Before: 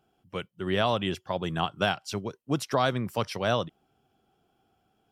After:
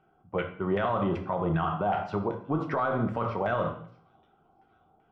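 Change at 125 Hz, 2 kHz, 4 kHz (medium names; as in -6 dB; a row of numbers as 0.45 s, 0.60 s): +1.0 dB, -3.0 dB, -15.5 dB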